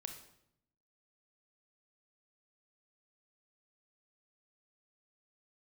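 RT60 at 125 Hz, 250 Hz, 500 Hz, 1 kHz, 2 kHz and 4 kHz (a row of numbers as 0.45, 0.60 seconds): 1.1, 1.0, 0.80, 0.70, 0.65, 0.60 seconds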